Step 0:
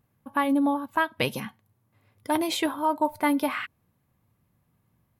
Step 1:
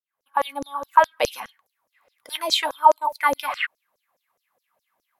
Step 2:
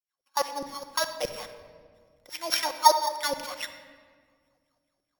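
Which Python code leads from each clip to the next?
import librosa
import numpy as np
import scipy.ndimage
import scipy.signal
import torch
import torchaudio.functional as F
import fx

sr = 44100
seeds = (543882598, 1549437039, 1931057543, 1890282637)

y1 = fx.fade_in_head(x, sr, length_s=0.55)
y1 = fx.filter_lfo_highpass(y1, sr, shape='saw_down', hz=4.8, low_hz=480.0, high_hz=6300.0, q=6.4)
y1 = fx.low_shelf(y1, sr, hz=140.0, db=5.5)
y2 = np.r_[np.sort(y1[:len(y1) // 8 * 8].reshape(-1, 8), axis=1).ravel(), y1[len(y1) // 8 * 8:]]
y2 = fx.rotary_switch(y2, sr, hz=6.7, then_hz=0.6, switch_at_s=0.66)
y2 = fx.room_shoebox(y2, sr, seeds[0], volume_m3=2600.0, walls='mixed', distance_m=0.93)
y2 = y2 * librosa.db_to_amplitude(-4.0)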